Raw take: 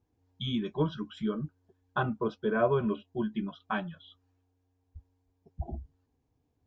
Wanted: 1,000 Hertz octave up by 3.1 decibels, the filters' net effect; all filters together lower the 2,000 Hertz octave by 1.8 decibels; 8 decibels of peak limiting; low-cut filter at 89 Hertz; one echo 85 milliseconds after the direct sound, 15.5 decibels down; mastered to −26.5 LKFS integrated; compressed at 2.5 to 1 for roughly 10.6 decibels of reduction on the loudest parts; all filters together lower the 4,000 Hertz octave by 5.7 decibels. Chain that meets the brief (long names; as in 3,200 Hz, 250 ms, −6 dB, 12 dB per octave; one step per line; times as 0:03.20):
high-pass filter 89 Hz
parametric band 1,000 Hz +5.5 dB
parametric band 2,000 Hz −5.5 dB
parametric band 4,000 Hz −5.5 dB
downward compressor 2.5 to 1, threshold −35 dBFS
brickwall limiter −28.5 dBFS
single-tap delay 85 ms −15.5 dB
level +14 dB